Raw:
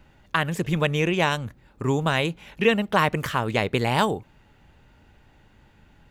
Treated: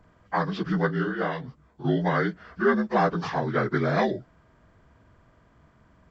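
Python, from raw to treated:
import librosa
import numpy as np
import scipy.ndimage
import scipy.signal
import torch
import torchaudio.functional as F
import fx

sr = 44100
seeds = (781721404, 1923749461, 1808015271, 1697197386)

y = fx.partial_stretch(x, sr, pct=77)
y = fx.detune_double(y, sr, cents=fx.line((0.88, 40.0), (1.84, 58.0)), at=(0.88, 1.84), fade=0.02)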